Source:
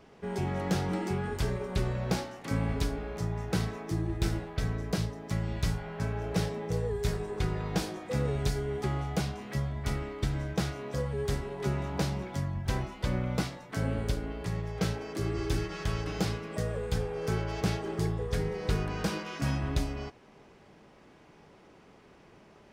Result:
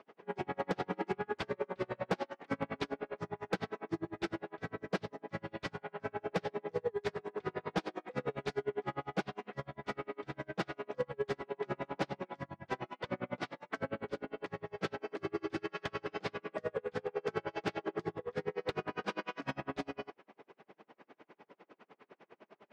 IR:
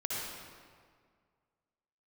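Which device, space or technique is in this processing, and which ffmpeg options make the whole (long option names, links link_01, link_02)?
helicopter radio: -af "highpass=310,lowpass=2800,aeval=exprs='val(0)*pow(10,-37*(0.5-0.5*cos(2*PI*9.9*n/s))/20)':channel_layout=same,asoftclip=type=hard:threshold=-30dB,volume=5.5dB"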